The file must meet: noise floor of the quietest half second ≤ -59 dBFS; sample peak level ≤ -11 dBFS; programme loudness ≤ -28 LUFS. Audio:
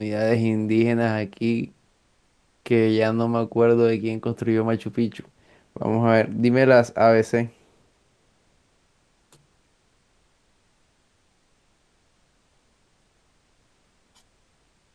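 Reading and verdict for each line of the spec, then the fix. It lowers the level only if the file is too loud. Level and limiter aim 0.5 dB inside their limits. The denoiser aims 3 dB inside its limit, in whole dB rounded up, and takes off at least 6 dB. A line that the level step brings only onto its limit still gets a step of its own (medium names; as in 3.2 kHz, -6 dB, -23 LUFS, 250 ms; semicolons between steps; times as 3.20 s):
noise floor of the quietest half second -65 dBFS: pass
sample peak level -4.0 dBFS: fail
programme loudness -21.0 LUFS: fail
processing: trim -7.5 dB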